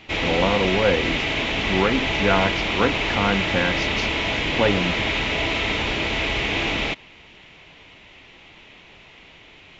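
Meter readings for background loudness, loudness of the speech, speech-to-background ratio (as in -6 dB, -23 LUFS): -22.5 LUFS, -24.0 LUFS, -1.5 dB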